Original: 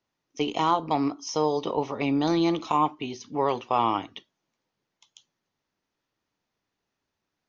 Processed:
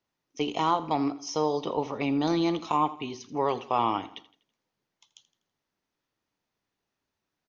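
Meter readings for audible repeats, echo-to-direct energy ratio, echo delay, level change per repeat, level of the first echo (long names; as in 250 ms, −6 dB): 3, −16.0 dB, 82 ms, −7.0 dB, −17.0 dB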